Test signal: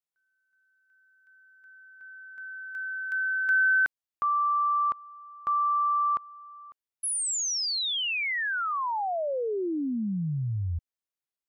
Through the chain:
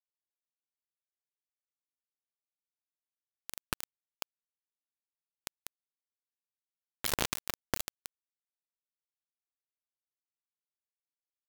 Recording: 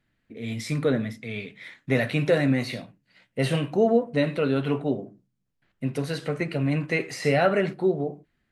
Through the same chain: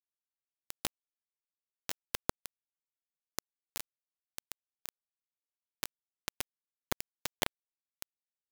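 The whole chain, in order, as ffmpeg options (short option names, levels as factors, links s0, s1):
-af "equalizer=f=250:t=o:w=0.67:g=7,equalizer=f=1600:t=o:w=0.67:g=-6,equalizer=f=10000:t=o:w=0.67:g=9,acompressor=threshold=0.0355:ratio=12:attack=4.9:release=264:knee=6:detection=peak,acrusher=samples=19:mix=1:aa=0.000001:lfo=1:lforange=30.4:lforate=3.8,afreqshift=25,acrusher=bits=3:mix=0:aa=0.000001,volume=1.68"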